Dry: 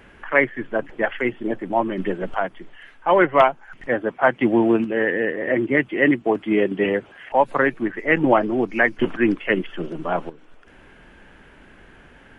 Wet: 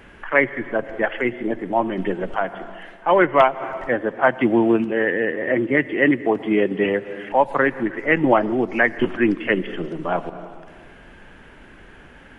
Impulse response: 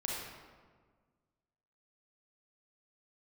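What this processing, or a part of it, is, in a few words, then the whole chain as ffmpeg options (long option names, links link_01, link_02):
ducked reverb: -filter_complex "[0:a]asplit=3[link_01][link_02][link_03];[1:a]atrim=start_sample=2205[link_04];[link_02][link_04]afir=irnorm=-1:irlink=0[link_05];[link_03]apad=whole_len=546305[link_06];[link_05][link_06]sidechaincompress=threshold=-34dB:ratio=6:attack=22:release=120,volume=-8.5dB[link_07];[link_01][link_07]amix=inputs=2:normalize=0"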